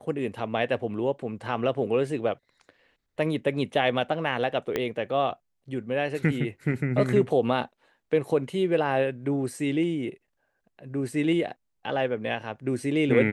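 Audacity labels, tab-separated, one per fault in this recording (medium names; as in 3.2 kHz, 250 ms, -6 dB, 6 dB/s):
4.760000	4.760000	pop -13 dBFS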